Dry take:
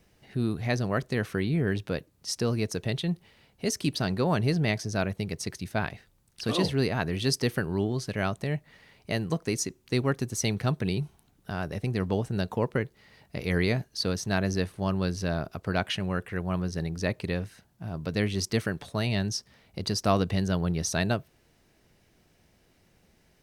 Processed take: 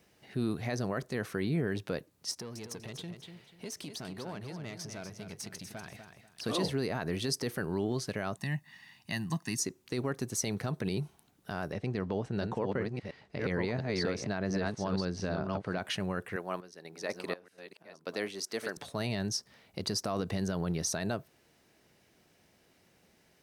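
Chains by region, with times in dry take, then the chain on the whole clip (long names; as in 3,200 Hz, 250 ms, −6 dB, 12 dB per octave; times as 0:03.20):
0:02.31–0:06.44: downward compressor 8 to 1, threshold −34 dBFS + tube saturation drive 31 dB, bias 0.4 + repeating echo 244 ms, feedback 27%, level −8 dB
0:08.37–0:09.59: high-pass filter 120 Hz + parametric band 550 Hz −12.5 dB 1.3 octaves + comb filter 1.1 ms, depth 71%
0:11.72–0:15.78: delay that plays each chunk backwards 696 ms, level −4.5 dB + high-frequency loss of the air 100 metres
0:16.36–0:18.77: delay that plays each chunk backwards 562 ms, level −7 dB + high-pass filter 340 Hz + sample-and-hold tremolo 4.1 Hz, depth 85%
whole clip: high-pass filter 200 Hz 6 dB per octave; dynamic equaliser 2,900 Hz, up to −5 dB, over −46 dBFS, Q 1.3; brickwall limiter −21.5 dBFS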